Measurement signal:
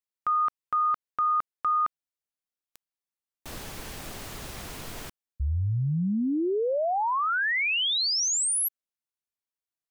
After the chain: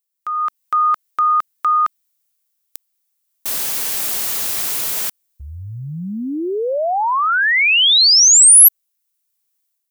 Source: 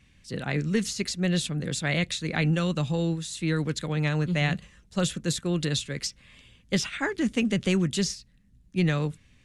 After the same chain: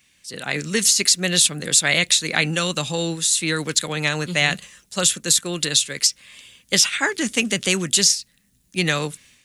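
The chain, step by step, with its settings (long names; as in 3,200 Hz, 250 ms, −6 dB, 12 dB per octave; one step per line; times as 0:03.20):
RIAA equalisation recording
automatic gain control gain up to 9 dB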